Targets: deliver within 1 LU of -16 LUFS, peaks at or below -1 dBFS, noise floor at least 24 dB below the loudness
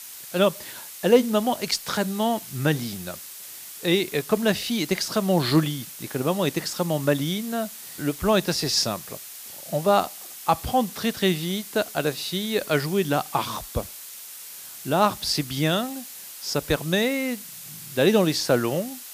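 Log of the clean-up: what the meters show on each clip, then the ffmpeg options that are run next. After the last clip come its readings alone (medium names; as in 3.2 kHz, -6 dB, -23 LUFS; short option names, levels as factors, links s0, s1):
noise floor -41 dBFS; noise floor target -49 dBFS; loudness -24.5 LUFS; peak level -5.5 dBFS; loudness target -16.0 LUFS
-> -af "afftdn=nr=8:nf=-41"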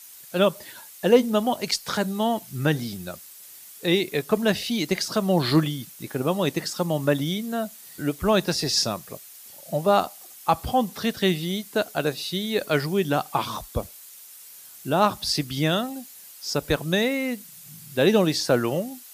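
noise floor -46 dBFS; noise floor target -49 dBFS
-> -af "afftdn=nr=6:nf=-46"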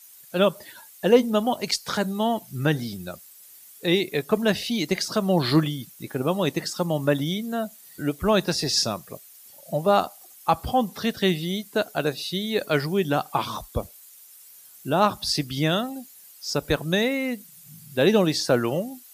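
noise floor -49 dBFS; loudness -24.5 LUFS; peak level -5.5 dBFS; loudness target -16.0 LUFS
-> -af "volume=2.66,alimiter=limit=0.891:level=0:latency=1"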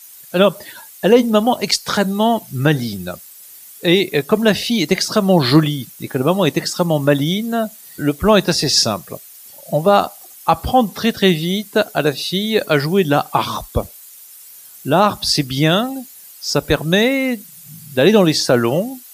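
loudness -16.5 LUFS; peak level -1.0 dBFS; noise floor -41 dBFS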